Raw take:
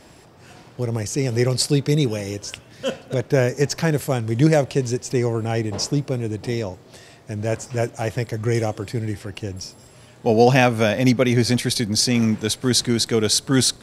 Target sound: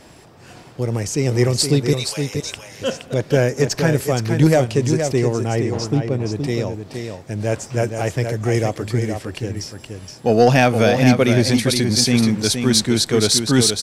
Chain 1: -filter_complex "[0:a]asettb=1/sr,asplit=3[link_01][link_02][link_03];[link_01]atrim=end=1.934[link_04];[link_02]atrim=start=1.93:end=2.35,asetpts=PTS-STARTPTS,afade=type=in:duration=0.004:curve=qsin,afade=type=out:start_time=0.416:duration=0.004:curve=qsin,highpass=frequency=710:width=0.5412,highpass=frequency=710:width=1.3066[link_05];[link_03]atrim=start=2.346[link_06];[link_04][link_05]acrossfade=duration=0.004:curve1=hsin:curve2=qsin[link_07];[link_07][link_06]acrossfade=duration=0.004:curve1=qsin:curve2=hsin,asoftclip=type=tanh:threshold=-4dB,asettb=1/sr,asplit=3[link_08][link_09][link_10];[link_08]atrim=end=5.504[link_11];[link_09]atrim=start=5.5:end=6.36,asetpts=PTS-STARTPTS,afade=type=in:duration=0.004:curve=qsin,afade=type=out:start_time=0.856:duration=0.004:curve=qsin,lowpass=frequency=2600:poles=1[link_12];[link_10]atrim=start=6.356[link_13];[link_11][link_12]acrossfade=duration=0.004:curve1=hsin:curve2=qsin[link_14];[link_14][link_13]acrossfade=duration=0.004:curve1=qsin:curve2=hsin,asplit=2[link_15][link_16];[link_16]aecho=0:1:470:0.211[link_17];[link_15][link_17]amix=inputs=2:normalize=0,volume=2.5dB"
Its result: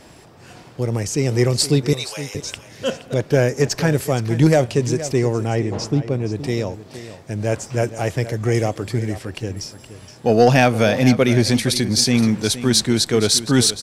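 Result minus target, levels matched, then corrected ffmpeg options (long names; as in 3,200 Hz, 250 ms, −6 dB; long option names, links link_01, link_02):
echo-to-direct −7 dB
-filter_complex "[0:a]asettb=1/sr,asplit=3[link_01][link_02][link_03];[link_01]atrim=end=1.934[link_04];[link_02]atrim=start=1.93:end=2.35,asetpts=PTS-STARTPTS,afade=type=in:duration=0.004:curve=qsin,afade=type=out:start_time=0.416:duration=0.004:curve=qsin,highpass=frequency=710:width=0.5412,highpass=frequency=710:width=1.3066[link_05];[link_03]atrim=start=2.346[link_06];[link_04][link_05]acrossfade=duration=0.004:curve1=hsin:curve2=qsin[link_07];[link_07][link_06]acrossfade=duration=0.004:curve1=qsin:curve2=hsin,asoftclip=type=tanh:threshold=-4dB,asettb=1/sr,asplit=3[link_08][link_09][link_10];[link_08]atrim=end=5.504[link_11];[link_09]atrim=start=5.5:end=6.36,asetpts=PTS-STARTPTS,afade=type=in:duration=0.004:curve=qsin,afade=type=out:start_time=0.856:duration=0.004:curve=qsin,lowpass=frequency=2600:poles=1[link_12];[link_10]atrim=start=6.356[link_13];[link_11][link_12]acrossfade=duration=0.004:curve1=hsin:curve2=qsin[link_14];[link_14][link_13]acrossfade=duration=0.004:curve1=qsin:curve2=hsin,asplit=2[link_15][link_16];[link_16]aecho=0:1:470:0.473[link_17];[link_15][link_17]amix=inputs=2:normalize=0,volume=2.5dB"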